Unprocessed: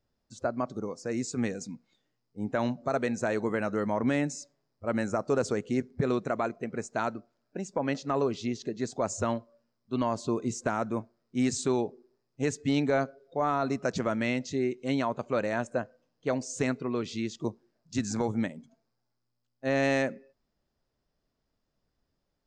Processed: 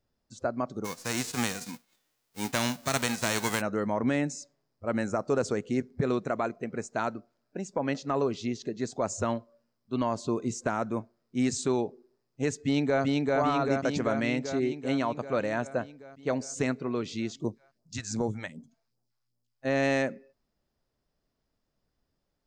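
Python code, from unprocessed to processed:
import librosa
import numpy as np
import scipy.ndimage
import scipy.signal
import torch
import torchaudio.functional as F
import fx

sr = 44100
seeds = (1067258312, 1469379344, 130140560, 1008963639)

y = fx.envelope_flatten(x, sr, power=0.3, at=(0.84, 3.6), fade=0.02)
y = fx.echo_throw(y, sr, start_s=12.59, length_s=0.44, ms=390, feedback_pct=70, wet_db=-1.0)
y = fx.phaser_stages(y, sr, stages=2, low_hz=210.0, high_hz=2600.0, hz=2.6, feedback_pct=25, at=(17.37, 19.65))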